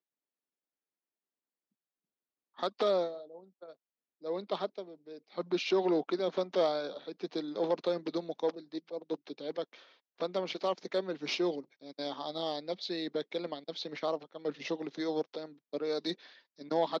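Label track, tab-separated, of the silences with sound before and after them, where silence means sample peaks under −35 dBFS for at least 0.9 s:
3.100000	4.250000	silence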